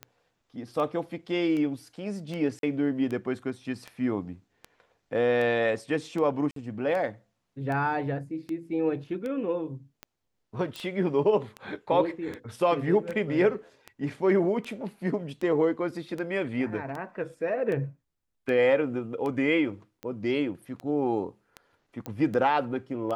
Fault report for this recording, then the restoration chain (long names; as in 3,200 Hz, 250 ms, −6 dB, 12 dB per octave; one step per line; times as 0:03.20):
scratch tick 78 rpm −23 dBFS
0:02.59–0:02.63: drop-out 42 ms
0:06.51–0:06.56: drop-out 53 ms
0:10.76: click
0:22.06: click −20 dBFS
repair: click removal
repair the gap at 0:02.59, 42 ms
repair the gap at 0:06.51, 53 ms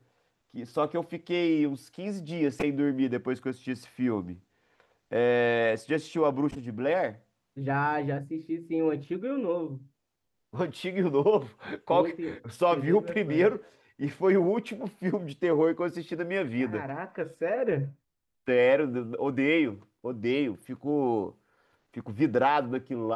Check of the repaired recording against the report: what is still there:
none of them is left